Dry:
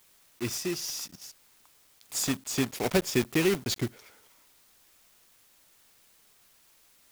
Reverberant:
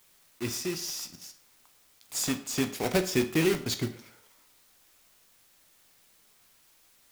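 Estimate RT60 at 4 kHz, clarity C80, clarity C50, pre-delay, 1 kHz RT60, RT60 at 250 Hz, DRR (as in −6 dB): 0.45 s, 16.5 dB, 13.0 dB, 12 ms, 0.50 s, 0.50 s, 7.5 dB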